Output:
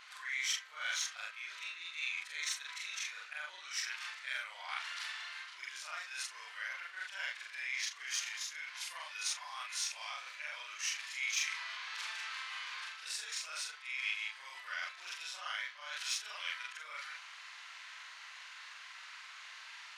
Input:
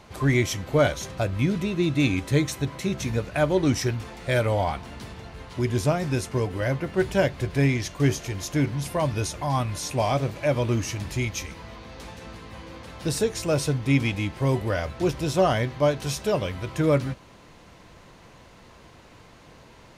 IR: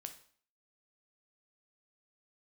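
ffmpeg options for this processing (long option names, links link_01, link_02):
-af "afftfilt=real='re':imag='-im':win_size=4096:overlap=0.75,areverse,acompressor=threshold=-39dB:ratio=8,areverse,highpass=frequency=1400:width=0.5412,highpass=frequency=1400:width=1.3066,adynamicsmooth=sensitivity=6.5:basefreq=6900,volume=12dB"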